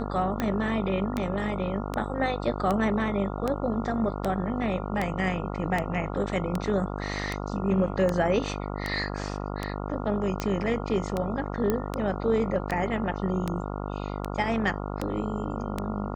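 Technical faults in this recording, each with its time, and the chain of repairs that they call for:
buzz 50 Hz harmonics 28 -33 dBFS
tick 78 rpm -14 dBFS
11.70 s: pop -13 dBFS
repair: de-click; de-hum 50 Hz, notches 28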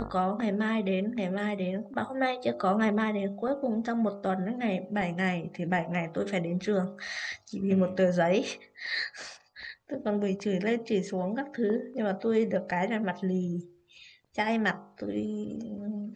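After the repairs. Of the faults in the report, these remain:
nothing left

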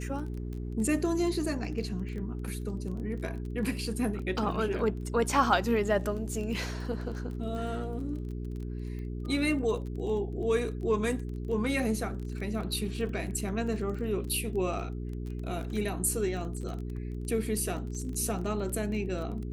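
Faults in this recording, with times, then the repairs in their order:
crackle 21 per s -37 dBFS
hum 60 Hz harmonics 7 -36 dBFS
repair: de-click; de-hum 60 Hz, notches 7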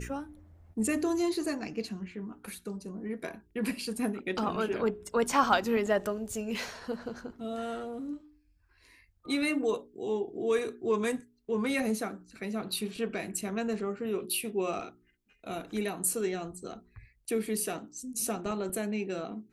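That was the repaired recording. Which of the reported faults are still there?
nothing left

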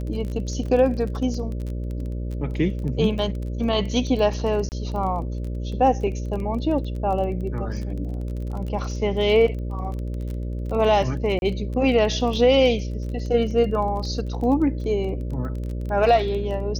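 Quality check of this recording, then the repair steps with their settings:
buzz 60 Hz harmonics 10 -28 dBFS
crackle 21 per s -30 dBFS
0.66 s: dropout 2.2 ms
4.69–4.72 s: dropout 29 ms
11.39–11.42 s: dropout 31 ms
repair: de-click; de-hum 60 Hz, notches 10; interpolate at 0.66 s, 2.2 ms; interpolate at 4.69 s, 29 ms; interpolate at 11.39 s, 31 ms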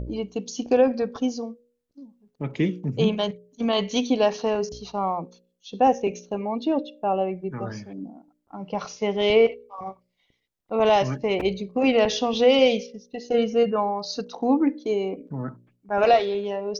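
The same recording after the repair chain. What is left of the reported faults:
nothing left

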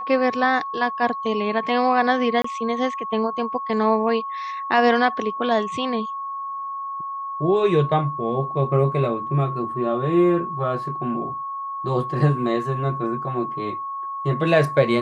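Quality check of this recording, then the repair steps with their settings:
whine 1.1 kHz -27 dBFS
2.42–2.44 s: dropout 24 ms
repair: band-stop 1.1 kHz, Q 30; interpolate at 2.42 s, 24 ms

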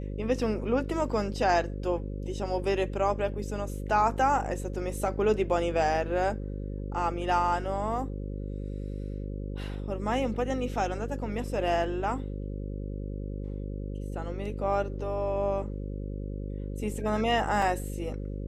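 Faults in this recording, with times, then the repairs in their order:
buzz 50 Hz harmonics 11 -35 dBFS
17.62 s: dropout 2.7 ms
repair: de-hum 50 Hz, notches 11; interpolate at 17.62 s, 2.7 ms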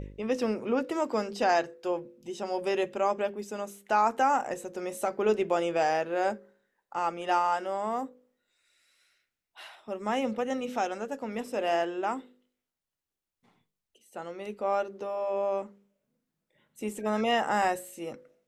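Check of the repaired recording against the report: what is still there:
nothing left

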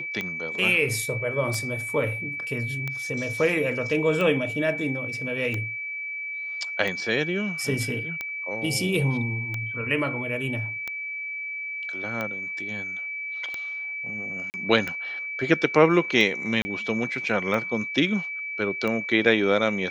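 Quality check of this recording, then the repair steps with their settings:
tick 45 rpm -16 dBFS
whine 2.3 kHz -30 dBFS
14.50–14.54 s: dropout 39 ms
16.62–16.65 s: dropout 30 ms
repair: de-click; band-stop 2.3 kHz, Q 30; interpolate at 14.50 s, 39 ms; interpolate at 16.62 s, 30 ms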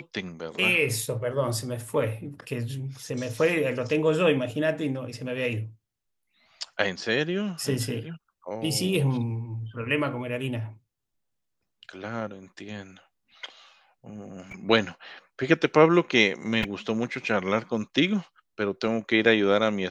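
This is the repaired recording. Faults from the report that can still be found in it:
nothing left

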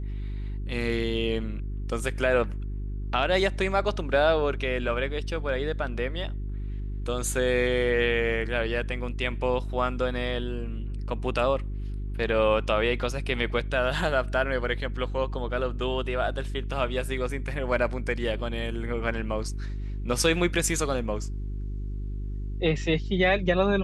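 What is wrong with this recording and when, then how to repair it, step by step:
hum 50 Hz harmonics 8 -32 dBFS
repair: de-hum 50 Hz, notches 8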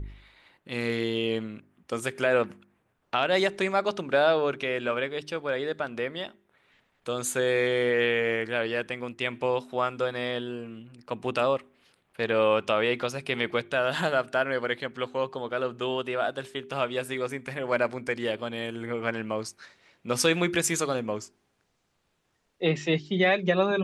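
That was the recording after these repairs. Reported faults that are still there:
nothing left

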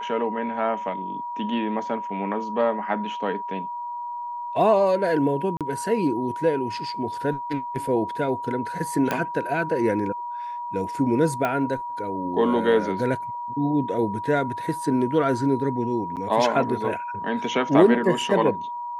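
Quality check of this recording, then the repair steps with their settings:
whine 960 Hz -29 dBFS
5.57–5.61 s: dropout 37 ms
9.11 s: pop -10 dBFS
11.45 s: pop -12 dBFS
16.16–16.17 s: dropout 8.1 ms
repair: de-click; band-stop 960 Hz, Q 30; interpolate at 5.57 s, 37 ms; interpolate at 16.16 s, 8.1 ms

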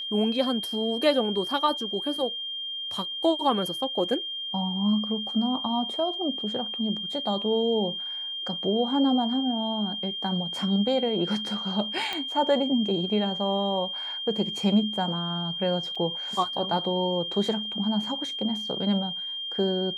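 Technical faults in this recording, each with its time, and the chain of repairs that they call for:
whine 3.2 kHz -31 dBFS
12.13 s: pop -16 dBFS
15.95–15.96 s: dropout 5.4 ms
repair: de-click; band-stop 3.2 kHz, Q 30; interpolate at 15.95 s, 5.4 ms

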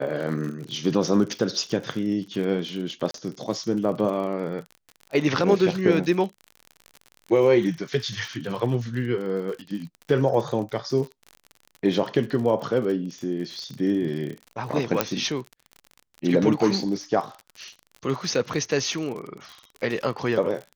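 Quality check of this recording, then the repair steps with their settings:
crackle 54 per s -32 dBFS
3.11–3.14 s: dropout 33 ms
15.01 s: pop -4 dBFS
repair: de-click; interpolate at 3.11 s, 33 ms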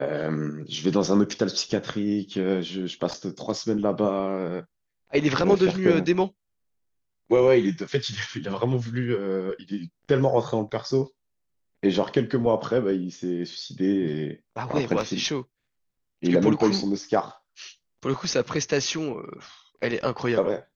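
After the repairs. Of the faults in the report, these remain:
15.01 s: pop

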